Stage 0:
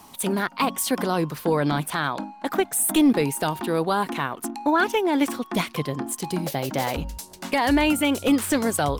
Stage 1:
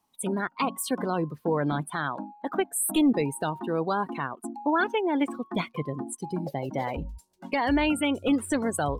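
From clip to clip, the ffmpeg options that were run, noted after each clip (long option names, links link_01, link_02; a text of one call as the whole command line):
ffmpeg -i in.wav -af "afftdn=noise_reduction=23:noise_floor=-30,volume=-4dB" out.wav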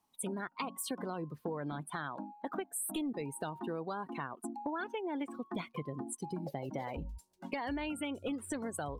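ffmpeg -i in.wav -af "acompressor=threshold=-31dB:ratio=6,volume=-4dB" out.wav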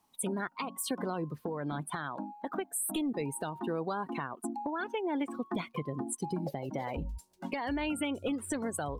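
ffmpeg -i in.wav -af "alimiter=level_in=5dB:limit=-24dB:level=0:latency=1:release=496,volume=-5dB,volume=6dB" out.wav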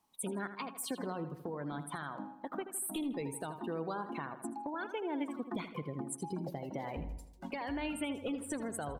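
ffmpeg -i in.wav -filter_complex "[0:a]asplit=2[link_01][link_02];[link_02]adelay=80,lowpass=frequency=4300:poles=1,volume=-10.5dB,asplit=2[link_03][link_04];[link_04]adelay=80,lowpass=frequency=4300:poles=1,volume=0.52,asplit=2[link_05][link_06];[link_06]adelay=80,lowpass=frequency=4300:poles=1,volume=0.52,asplit=2[link_07][link_08];[link_08]adelay=80,lowpass=frequency=4300:poles=1,volume=0.52,asplit=2[link_09][link_10];[link_10]adelay=80,lowpass=frequency=4300:poles=1,volume=0.52,asplit=2[link_11][link_12];[link_12]adelay=80,lowpass=frequency=4300:poles=1,volume=0.52[link_13];[link_01][link_03][link_05][link_07][link_09][link_11][link_13]amix=inputs=7:normalize=0,volume=-4.5dB" out.wav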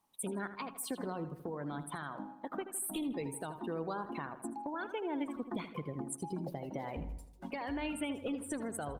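ffmpeg -i in.wav -ar 48000 -c:a libopus -b:a 32k out.opus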